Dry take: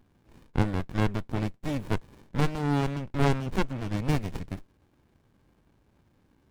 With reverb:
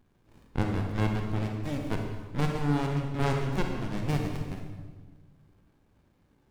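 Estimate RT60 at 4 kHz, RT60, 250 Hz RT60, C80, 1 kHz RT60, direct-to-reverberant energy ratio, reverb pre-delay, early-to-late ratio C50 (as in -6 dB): 1.1 s, 1.5 s, 1.9 s, 5.0 dB, 1.3 s, 2.0 dB, 32 ms, 3.5 dB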